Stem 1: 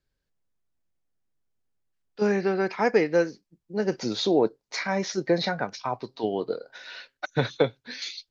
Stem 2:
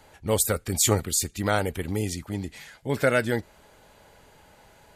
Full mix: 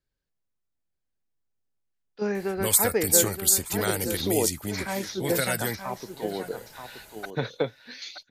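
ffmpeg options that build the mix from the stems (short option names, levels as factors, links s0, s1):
-filter_complex "[0:a]volume=0.596,asplit=2[s0][s1];[s1]volume=0.355[s2];[1:a]aemphasis=mode=production:type=50fm,acrossover=split=150|1300|4700[s3][s4][s5][s6];[s3]acompressor=threshold=0.0126:ratio=4[s7];[s4]acompressor=threshold=0.0251:ratio=4[s8];[s5]acompressor=threshold=0.0251:ratio=4[s9];[s6]acompressor=threshold=0.1:ratio=4[s10];[s7][s8][s9][s10]amix=inputs=4:normalize=0,adelay=2350,volume=1.12,asplit=2[s11][s12];[s12]volume=0.0841[s13];[s2][s13]amix=inputs=2:normalize=0,aecho=0:1:926:1[s14];[s0][s11][s14]amix=inputs=3:normalize=0"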